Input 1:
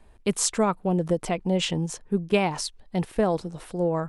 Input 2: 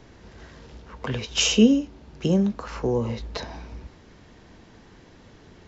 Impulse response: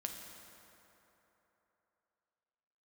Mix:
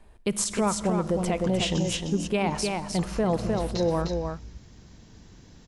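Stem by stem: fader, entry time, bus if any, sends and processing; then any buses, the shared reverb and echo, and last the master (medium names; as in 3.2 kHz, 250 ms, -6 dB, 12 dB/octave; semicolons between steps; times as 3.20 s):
-2.0 dB, 0.00 s, send -7 dB, echo send -3.5 dB, none
-14.0 dB, 0.40 s, no send, echo send -4.5 dB, tone controls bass +10 dB, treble +14 dB; compressor with a negative ratio -23 dBFS, ratio -1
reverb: on, RT60 3.5 s, pre-delay 5 ms
echo: delay 305 ms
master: peak limiter -16 dBFS, peak gain reduction 11 dB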